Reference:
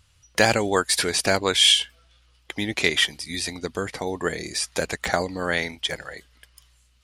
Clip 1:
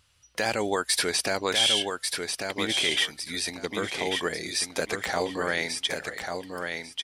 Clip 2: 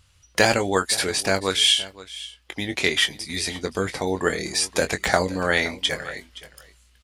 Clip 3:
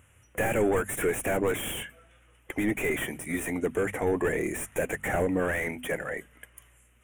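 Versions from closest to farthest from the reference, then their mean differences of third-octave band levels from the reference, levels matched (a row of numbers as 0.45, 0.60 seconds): 2, 1, 3; 3.5, 5.5, 8.5 decibels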